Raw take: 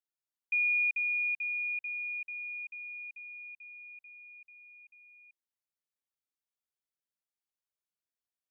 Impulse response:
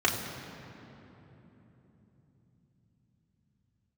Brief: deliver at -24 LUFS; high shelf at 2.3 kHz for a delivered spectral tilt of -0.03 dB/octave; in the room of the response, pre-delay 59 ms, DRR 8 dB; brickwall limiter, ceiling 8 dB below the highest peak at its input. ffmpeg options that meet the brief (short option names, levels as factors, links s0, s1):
-filter_complex "[0:a]highshelf=f=2300:g=-5,alimiter=level_in=3.76:limit=0.0631:level=0:latency=1,volume=0.266,asplit=2[s0][s1];[1:a]atrim=start_sample=2205,adelay=59[s2];[s1][s2]afir=irnorm=-1:irlink=0,volume=0.0891[s3];[s0][s3]amix=inputs=2:normalize=0,volume=5.31"